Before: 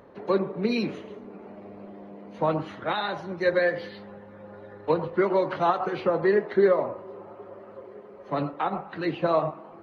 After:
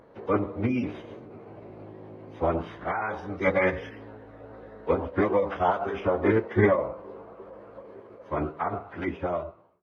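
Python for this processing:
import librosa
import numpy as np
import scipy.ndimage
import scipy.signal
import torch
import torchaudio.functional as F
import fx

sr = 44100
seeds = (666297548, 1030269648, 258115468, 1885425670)

y = fx.fade_out_tail(x, sr, length_s=0.92)
y = fx.pitch_keep_formants(y, sr, semitones=-11.0)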